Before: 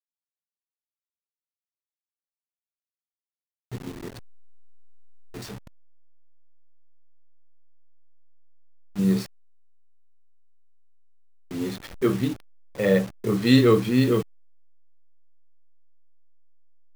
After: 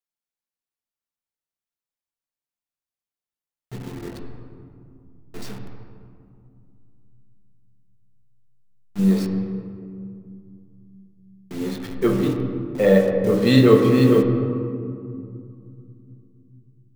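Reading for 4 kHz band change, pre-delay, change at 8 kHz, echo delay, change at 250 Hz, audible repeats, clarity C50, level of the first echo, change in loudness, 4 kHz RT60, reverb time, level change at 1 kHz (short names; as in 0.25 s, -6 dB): +1.0 dB, 4 ms, n/a, none, +4.5 dB, none, 4.5 dB, none, +3.5 dB, 1.2 s, 2.4 s, +4.5 dB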